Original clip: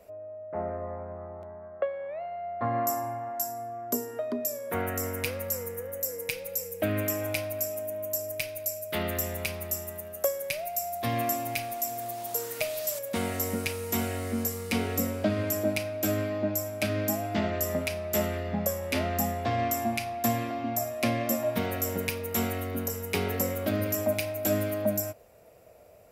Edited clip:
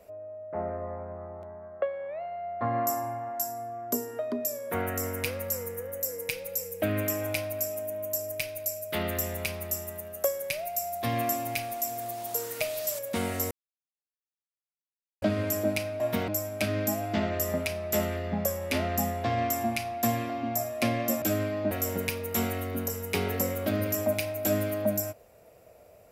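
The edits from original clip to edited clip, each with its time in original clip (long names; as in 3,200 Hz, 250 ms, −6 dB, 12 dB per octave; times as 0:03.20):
0:13.51–0:15.22: silence
0:16.00–0:16.49: swap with 0:21.43–0:21.71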